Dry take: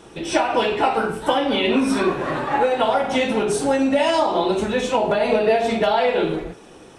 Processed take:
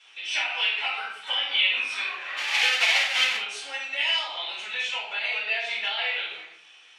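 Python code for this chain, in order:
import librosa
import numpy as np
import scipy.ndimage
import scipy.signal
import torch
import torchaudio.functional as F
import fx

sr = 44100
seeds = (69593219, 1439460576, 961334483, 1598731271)

y = fx.halfwave_hold(x, sr, at=(2.36, 3.35), fade=0.02)
y = fx.ladder_bandpass(y, sr, hz=2900.0, resonance_pct=45)
y = fx.room_shoebox(y, sr, seeds[0], volume_m3=260.0, walls='furnished', distance_m=6.9)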